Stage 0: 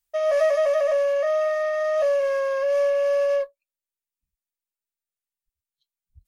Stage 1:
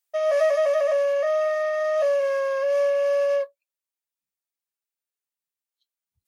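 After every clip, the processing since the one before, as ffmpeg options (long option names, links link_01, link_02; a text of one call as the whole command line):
ffmpeg -i in.wav -af "highpass=320" out.wav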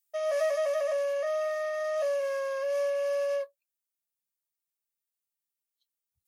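ffmpeg -i in.wav -af "highshelf=frequency=5800:gain=11,volume=-7.5dB" out.wav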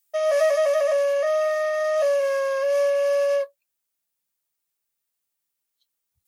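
ffmpeg -i in.wav -af "acontrast=66,volume=1.5dB" out.wav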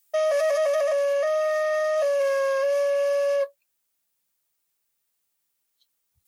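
ffmpeg -i in.wav -af "alimiter=limit=-22dB:level=0:latency=1:release=20,volume=4.5dB" out.wav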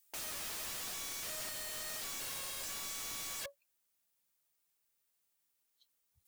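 ffmpeg -i in.wav -af "aeval=exprs='(mod(44.7*val(0)+1,2)-1)/44.7':channel_layout=same,volume=-4.5dB" out.wav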